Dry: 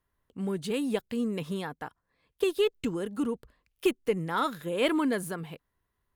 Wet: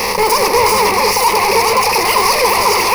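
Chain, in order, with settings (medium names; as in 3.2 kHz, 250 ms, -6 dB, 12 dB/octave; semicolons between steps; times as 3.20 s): spectral levelling over time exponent 0.4; wide varispeed 2.09×; treble shelf 6.9 kHz +11 dB; echo whose repeats swap between lows and highs 206 ms, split 1.8 kHz, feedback 72%, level -3 dB; in parallel at +2 dB: level held to a coarse grid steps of 21 dB; on the sum: fuzz box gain 37 dB, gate -41 dBFS; wow and flutter 130 cents; rippled EQ curve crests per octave 0.87, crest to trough 14 dB; on a send at -10 dB: reverberation RT60 0.90 s, pre-delay 17 ms; on the sum: trim -1 dB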